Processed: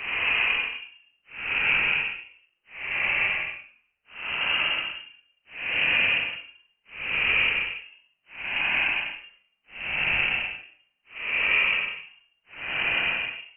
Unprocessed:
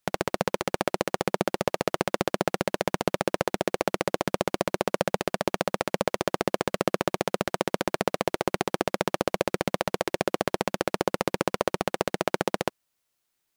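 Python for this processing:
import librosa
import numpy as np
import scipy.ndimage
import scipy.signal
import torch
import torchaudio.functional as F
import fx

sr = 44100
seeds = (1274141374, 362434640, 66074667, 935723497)

y = fx.paulstretch(x, sr, seeds[0], factor=21.0, window_s=0.05, from_s=4.06)
y = fx.freq_invert(y, sr, carrier_hz=3000)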